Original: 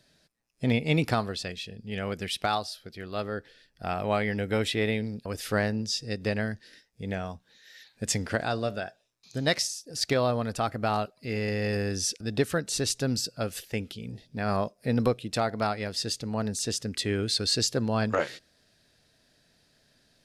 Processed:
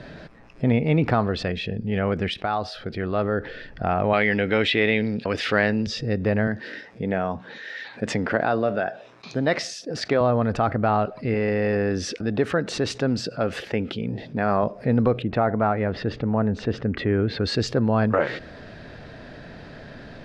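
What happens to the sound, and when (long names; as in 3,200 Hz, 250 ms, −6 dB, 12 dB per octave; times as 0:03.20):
0:02.34–0:03.05: fade in, from −13 dB
0:04.13–0:05.87: meter weighting curve D
0:06.47–0:10.21: Bessel high-pass filter 200 Hz
0:11.34–0:14.63: high-pass filter 210 Hz 6 dB per octave
0:15.22–0:17.45: low-pass filter 2,200 Hz
whole clip: low-pass filter 1,700 Hz 12 dB per octave; envelope flattener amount 50%; level +3.5 dB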